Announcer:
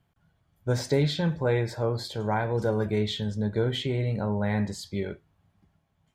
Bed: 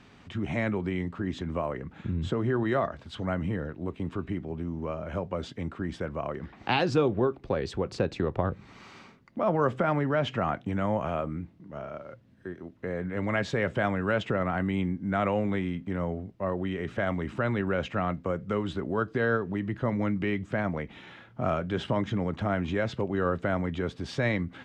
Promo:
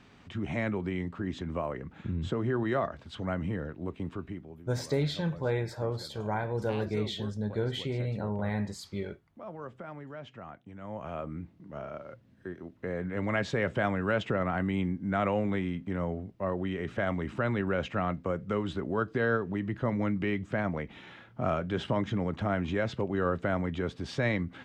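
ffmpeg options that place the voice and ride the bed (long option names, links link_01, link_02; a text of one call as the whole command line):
ffmpeg -i stem1.wav -i stem2.wav -filter_complex "[0:a]adelay=4000,volume=-5dB[link_01];[1:a]volume=13dB,afade=type=out:start_time=3.99:duration=0.65:silence=0.188365,afade=type=in:start_time=10.79:duration=0.83:silence=0.16788[link_02];[link_01][link_02]amix=inputs=2:normalize=0" out.wav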